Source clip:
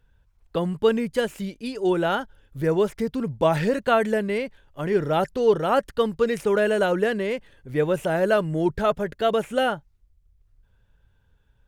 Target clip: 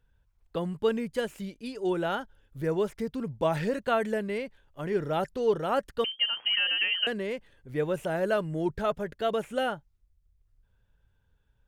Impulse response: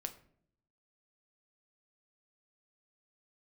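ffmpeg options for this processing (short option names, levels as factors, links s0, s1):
-filter_complex "[0:a]asettb=1/sr,asplit=3[s0][s1][s2];[s0]atrim=end=6.044[s3];[s1]atrim=start=6.04:end=7.07,asetpts=PTS-STARTPTS,afade=t=in:d=0.004:c=qsin,afade=t=out:st=1.026:d=0.004:c=qsin,lowpass=f=2800:t=q:w=0.5098,lowpass=f=2800:t=q:w=0.6013,lowpass=f=2800:t=q:w=0.9,lowpass=f=2800:t=q:w=2.563,afreqshift=-3300[s4];[s2]atrim=start=7.066[s5];[s3][s4]acrossfade=d=0.004:c1=hsin:c2=qsin[s6];[s6][s5]acrossfade=d=0.004:c1=qsin:c2=hsin,volume=0.473"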